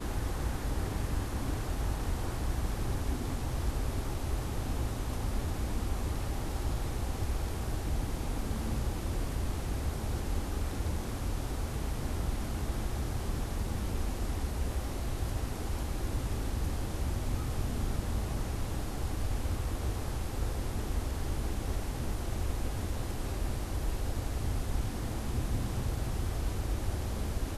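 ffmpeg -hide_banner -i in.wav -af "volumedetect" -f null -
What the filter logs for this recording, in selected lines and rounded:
mean_volume: -32.3 dB
max_volume: -18.9 dB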